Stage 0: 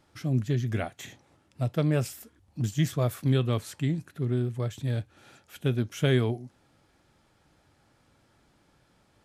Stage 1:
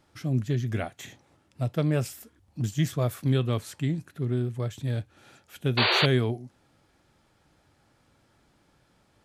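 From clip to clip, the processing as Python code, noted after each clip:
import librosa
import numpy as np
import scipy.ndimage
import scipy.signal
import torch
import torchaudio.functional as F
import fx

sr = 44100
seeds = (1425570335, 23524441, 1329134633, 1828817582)

y = fx.spec_paint(x, sr, seeds[0], shape='noise', start_s=5.77, length_s=0.29, low_hz=340.0, high_hz=4700.0, level_db=-23.0)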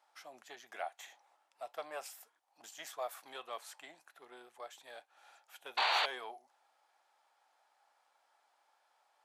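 y = fx.diode_clip(x, sr, knee_db=-12.5)
y = fx.ladder_highpass(y, sr, hz=690.0, resonance_pct=55)
y = y * 10.0 ** (1.0 / 20.0)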